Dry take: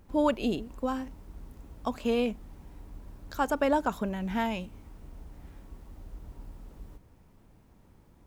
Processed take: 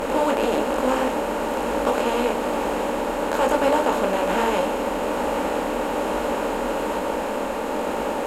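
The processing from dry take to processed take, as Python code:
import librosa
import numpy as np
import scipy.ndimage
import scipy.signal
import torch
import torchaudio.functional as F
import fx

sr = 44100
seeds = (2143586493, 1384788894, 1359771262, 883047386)

y = fx.bin_compress(x, sr, power=0.2)
y = fx.graphic_eq(y, sr, hz=(125, 500, 8000), db=(-12, 4, 5))
y = fx.detune_double(y, sr, cents=39)
y = y * 10.0 ** (2.5 / 20.0)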